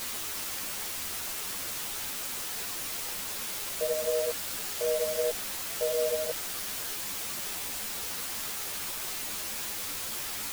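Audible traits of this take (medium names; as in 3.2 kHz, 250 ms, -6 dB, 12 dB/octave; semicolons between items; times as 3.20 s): a quantiser's noise floor 6-bit, dither triangular; a shimmering, thickened sound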